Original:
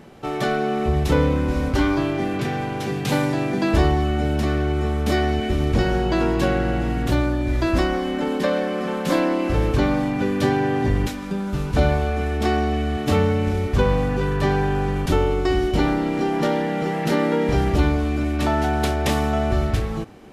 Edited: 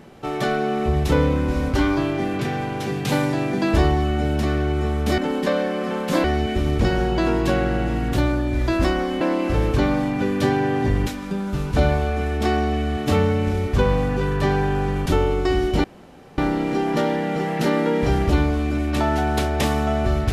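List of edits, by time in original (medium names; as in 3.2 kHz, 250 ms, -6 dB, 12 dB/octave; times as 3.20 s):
8.15–9.21 s: move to 5.18 s
15.84 s: insert room tone 0.54 s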